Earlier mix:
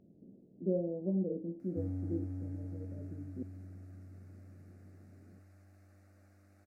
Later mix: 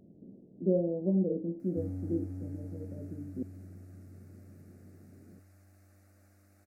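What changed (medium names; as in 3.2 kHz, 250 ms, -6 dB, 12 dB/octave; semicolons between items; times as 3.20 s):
speech +5.0 dB; master: add treble shelf 6.8 kHz +12 dB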